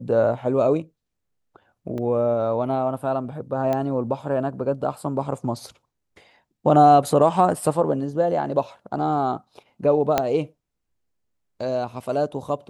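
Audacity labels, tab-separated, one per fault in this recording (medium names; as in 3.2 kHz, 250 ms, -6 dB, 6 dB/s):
1.980000	1.980000	dropout 2.8 ms
3.730000	3.730000	pop -13 dBFS
10.180000	10.180000	pop -5 dBFS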